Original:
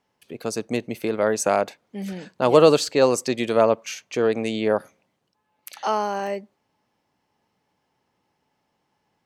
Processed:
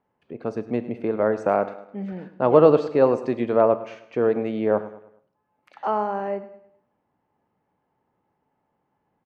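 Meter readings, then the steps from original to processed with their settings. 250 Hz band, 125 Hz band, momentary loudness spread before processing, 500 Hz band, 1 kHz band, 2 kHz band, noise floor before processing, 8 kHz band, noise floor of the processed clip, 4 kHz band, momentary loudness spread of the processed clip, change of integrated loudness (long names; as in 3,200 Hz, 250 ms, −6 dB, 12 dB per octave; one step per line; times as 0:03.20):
+0.5 dB, +0.5 dB, 16 LU, 0.0 dB, −0.5 dB, −5.5 dB, −74 dBFS, below −25 dB, −75 dBFS, below −15 dB, 16 LU, −0.5 dB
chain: low-pass filter 1,400 Hz 12 dB per octave
on a send: repeating echo 104 ms, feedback 41%, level −16 dB
on the sum: four-comb reverb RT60 0.59 s, combs from 26 ms, DRR 14.5 dB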